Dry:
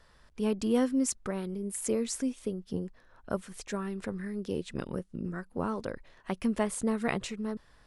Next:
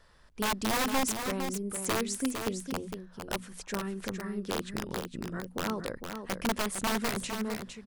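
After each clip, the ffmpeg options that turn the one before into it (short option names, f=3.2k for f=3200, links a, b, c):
-af "bandreject=f=60:t=h:w=6,bandreject=f=120:t=h:w=6,bandreject=f=180:t=h:w=6,bandreject=f=240:t=h:w=6,aeval=exprs='(mod(14.1*val(0)+1,2)-1)/14.1':c=same,aecho=1:1:457:0.447"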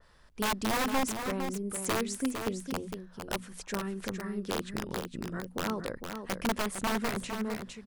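-af "adynamicequalizer=threshold=0.00562:dfrequency=2900:dqfactor=0.7:tfrequency=2900:tqfactor=0.7:attack=5:release=100:ratio=0.375:range=3:mode=cutabove:tftype=highshelf"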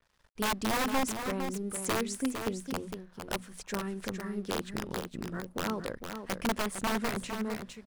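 -af "aeval=exprs='sgn(val(0))*max(abs(val(0))-0.00119,0)':c=same"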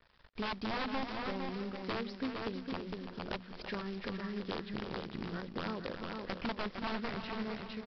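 -af "acompressor=threshold=-46dB:ratio=2.5,aresample=11025,acrusher=bits=3:mode=log:mix=0:aa=0.000001,aresample=44100,aecho=1:1:332|664|996:0.355|0.0852|0.0204,volume=5dB"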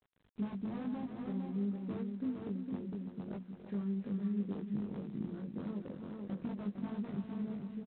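-filter_complex "[0:a]bandpass=f=190:t=q:w=1.6:csg=0,asplit=2[a][b];[b]adelay=20,volume=-2.5dB[c];[a][c]amix=inputs=2:normalize=0,volume=2.5dB" -ar 8000 -c:a adpcm_g726 -b:a 24k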